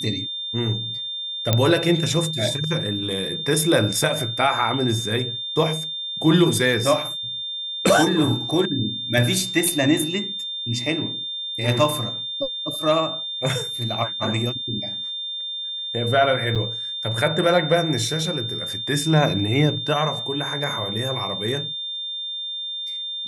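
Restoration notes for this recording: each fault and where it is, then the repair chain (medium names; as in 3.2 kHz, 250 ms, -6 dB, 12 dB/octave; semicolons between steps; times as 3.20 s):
whine 3.6 kHz -27 dBFS
1.53 s: pop -3 dBFS
16.55–16.56 s: dropout 7 ms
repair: de-click; band-stop 3.6 kHz, Q 30; interpolate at 16.55 s, 7 ms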